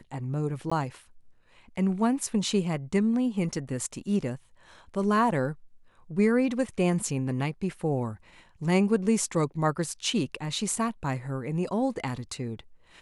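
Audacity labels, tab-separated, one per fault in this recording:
0.700000	0.710000	drop-out 15 ms

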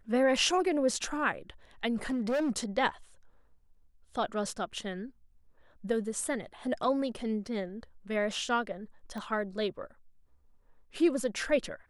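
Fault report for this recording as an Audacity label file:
2.100000	2.510000	clipping −26.5 dBFS
9.180000	9.180000	click −28 dBFS

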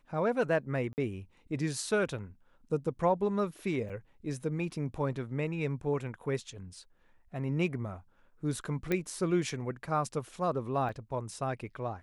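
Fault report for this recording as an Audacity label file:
0.930000	0.980000	drop-out 49 ms
3.890000	3.900000	drop-out 6.5 ms
8.920000	8.920000	click −17 dBFS
10.890000	10.890000	drop-out 2 ms

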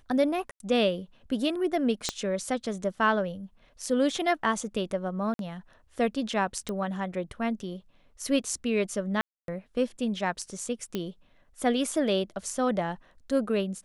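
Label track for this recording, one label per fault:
0.510000	0.600000	drop-out 92 ms
2.090000	2.090000	click −12 dBFS
5.340000	5.390000	drop-out 52 ms
6.690000	6.690000	click −19 dBFS
9.210000	9.480000	drop-out 272 ms
10.950000	10.950000	click −17 dBFS

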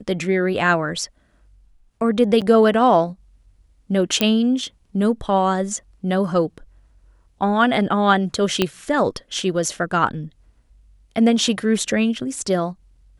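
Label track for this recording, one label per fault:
2.410000	2.420000	drop-out 6.9 ms
4.210000	4.210000	click −3 dBFS
8.620000	8.620000	click −4 dBFS

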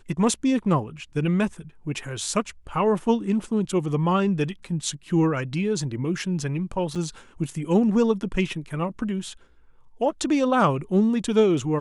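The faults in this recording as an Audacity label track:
6.950000	6.960000	drop-out 5.9 ms

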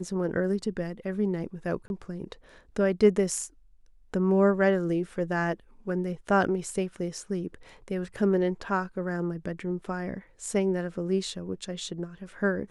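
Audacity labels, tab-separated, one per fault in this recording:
1.880000	1.900000	drop-out 21 ms

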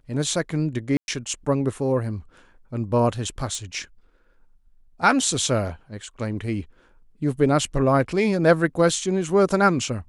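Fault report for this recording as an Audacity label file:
0.970000	1.080000	drop-out 111 ms
3.550000	3.550000	click −19 dBFS

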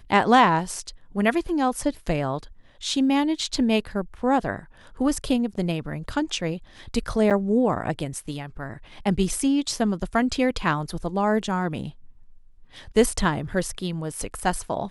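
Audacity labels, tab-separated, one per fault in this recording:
7.300000	7.310000	drop-out 7.5 ms

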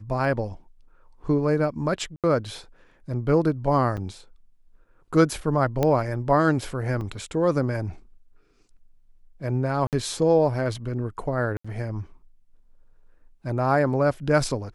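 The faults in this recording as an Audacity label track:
2.160000	2.240000	drop-out 77 ms
3.970000	3.980000	drop-out 6.2 ms
5.830000	5.830000	click −10 dBFS
7.010000	7.010000	drop-out 2.4 ms
9.870000	9.930000	drop-out 58 ms
11.570000	11.640000	drop-out 75 ms

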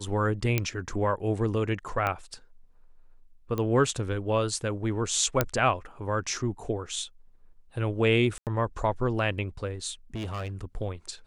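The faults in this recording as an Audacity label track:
0.580000	0.580000	click −10 dBFS
2.070000	2.070000	click −15 dBFS
3.580000	3.580000	click −18 dBFS
5.410000	5.410000	click −7 dBFS
8.380000	8.470000	drop-out 88 ms
10.150000	10.550000	clipping −30 dBFS

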